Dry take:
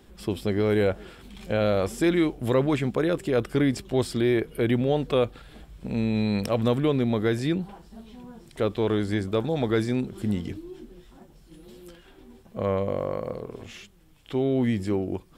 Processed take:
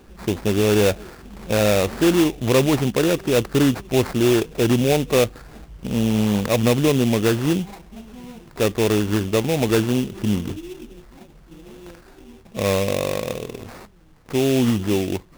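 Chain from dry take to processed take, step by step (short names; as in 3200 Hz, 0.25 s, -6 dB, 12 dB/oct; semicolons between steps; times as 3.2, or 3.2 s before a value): dynamic EQ 3200 Hz, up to -4 dB, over -45 dBFS, Q 1.5; sample-rate reducer 3100 Hz, jitter 20%; gain +5.5 dB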